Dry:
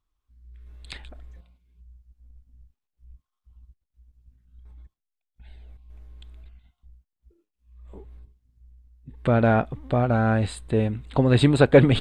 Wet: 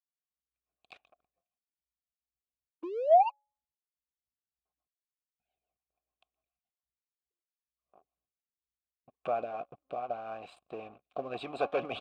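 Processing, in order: 2.83–3.30 s: painted sound rise 330–980 Hz -13 dBFS; rotary cabinet horn 7 Hz, later 0.75 Hz, at 8.29 s; 9.43–10.47 s: compression 3:1, threshold -23 dBFS, peak gain reduction 5.5 dB; de-hum 281 Hz, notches 27; harmonic-percussive split harmonic -11 dB; waveshaping leveller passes 3; vowel filter a; trim -4.5 dB

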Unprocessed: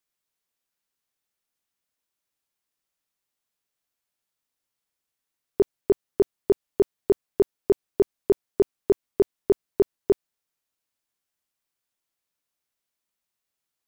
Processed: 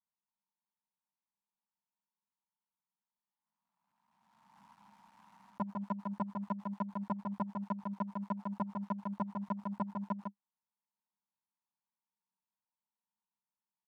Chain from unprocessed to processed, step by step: cycle switcher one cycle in 2, muted; dynamic bell 730 Hz, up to +6 dB, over -35 dBFS, Q 0.71; peak limiter -16 dBFS, peak gain reduction 9 dB; two resonant band-passes 430 Hz, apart 2.2 oct; delay 152 ms -5.5 dB; swell ahead of each attack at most 30 dB/s; trim +3.5 dB

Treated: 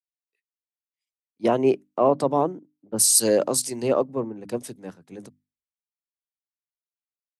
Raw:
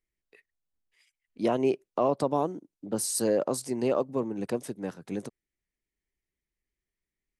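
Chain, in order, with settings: high-pass 47 Hz; hum notches 50/100/150/200/250/300 Hz; three bands expanded up and down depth 100%; trim +4 dB

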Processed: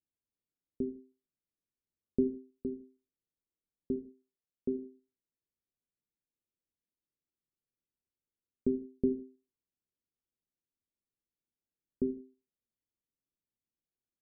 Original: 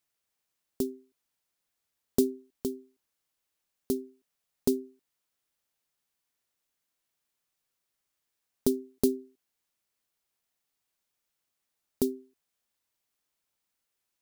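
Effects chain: inverse Chebyshev low-pass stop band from 2.6 kHz, stop band 80 dB; 3.96–4.79 s: bass shelf 250 Hz -8.5 dB; gated-style reverb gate 200 ms falling, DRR 8.5 dB; trim -4 dB

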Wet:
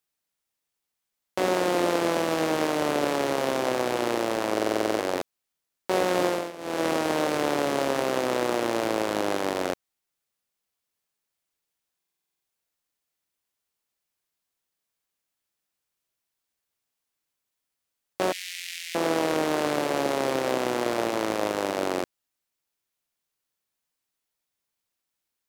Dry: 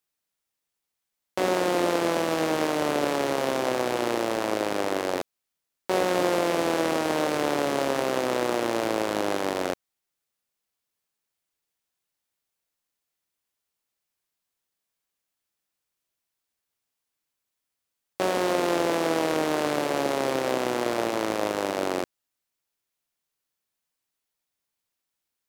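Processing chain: 6.25–6.86 s: dip -16 dB, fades 0.27 s; 18.32–18.95 s: steep high-pass 2 kHz 48 dB/octave; buffer glitch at 4.53/11.97 s, samples 2048, times 9

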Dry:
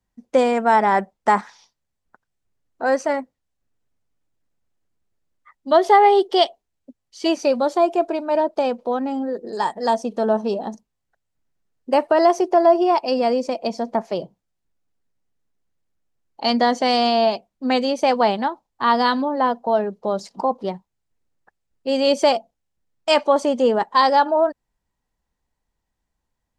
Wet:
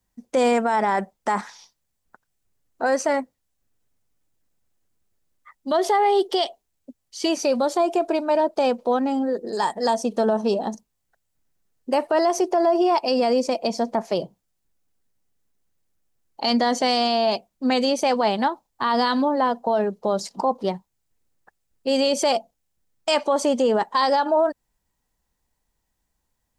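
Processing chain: treble shelf 6.2 kHz +10 dB; peak limiter -13.5 dBFS, peak gain reduction 10.5 dB; trim +1.5 dB

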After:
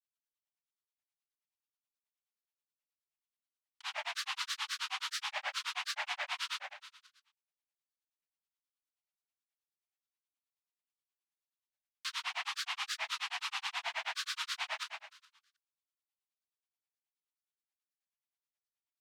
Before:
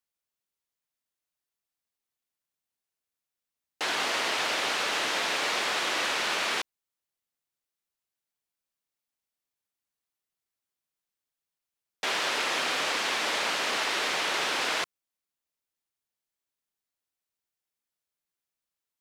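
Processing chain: rippled Chebyshev high-pass 810 Hz, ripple 6 dB; feedback delay 143 ms, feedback 41%, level -6 dB; granulator 100 ms, grains 9.4 per s, spray 22 ms, pitch spread up and down by 7 st; trim -4 dB

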